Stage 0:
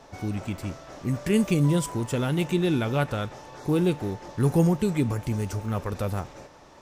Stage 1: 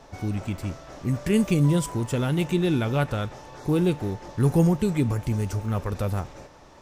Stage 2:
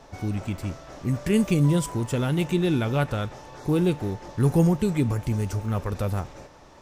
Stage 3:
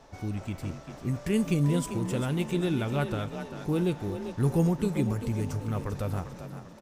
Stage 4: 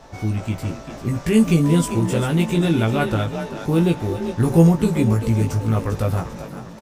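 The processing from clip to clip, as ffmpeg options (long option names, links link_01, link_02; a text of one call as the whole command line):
ffmpeg -i in.wav -af "lowshelf=frequency=87:gain=7" out.wav
ffmpeg -i in.wav -af anull out.wav
ffmpeg -i in.wav -filter_complex "[0:a]asplit=5[link_01][link_02][link_03][link_04][link_05];[link_02]adelay=395,afreqshift=37,volume=-10dB[link_06];[link_03]adelay=790,afreqshift=74,volume=-17.5dB[link_07];[link_04]adelay=1185,afreqshift=111,volume=-25.1dB[link_08];[link_05]adelay=1580,afreqshift=148,volume=-32.6dB[link_09];[link_01][link_06][link_07][link_08][link_09]amix=inputs=5:normalize=0,volume=-5dB" out.wav
ffmpeg -i in.wav -filter_complex "[0:a]asplit=2[link_01][link_02];[link_02]adelay=18,volume=-3.5dB[link_03];[link_01][link_03]amix=inputs=2:normalize=0,volume=8dB" out.wav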